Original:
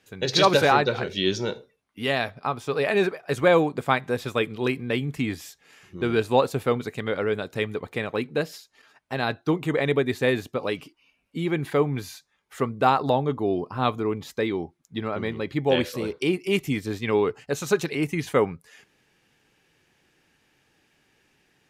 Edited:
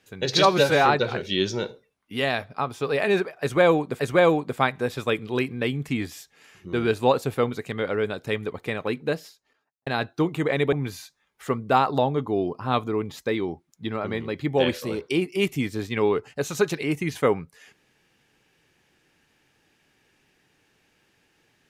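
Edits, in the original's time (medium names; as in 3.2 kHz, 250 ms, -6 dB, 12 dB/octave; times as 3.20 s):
0.45–0.72 s: stretch 1.5×
3.28–3.86 s: loop, 2 plays
8.32–9.15 s: studio fade out
10.01–11.84 s: delete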